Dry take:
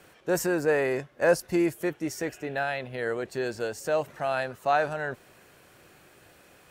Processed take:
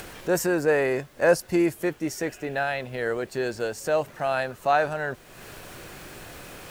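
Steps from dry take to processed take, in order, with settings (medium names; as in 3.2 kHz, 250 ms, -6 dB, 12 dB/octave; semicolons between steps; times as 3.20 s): added noise pink -59 dBFS; upward compressor, threshold -34 dBFS; trim +2.5 dB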